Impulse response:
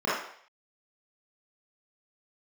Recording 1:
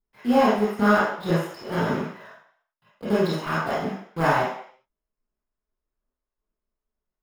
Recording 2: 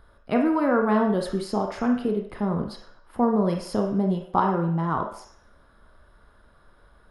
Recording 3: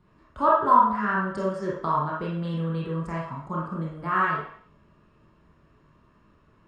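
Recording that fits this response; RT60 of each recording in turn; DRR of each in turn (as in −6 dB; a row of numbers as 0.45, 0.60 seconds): 1; 0.60, 0.60, 0.60 seconds; −10.5, 2.5, −5.5 decibels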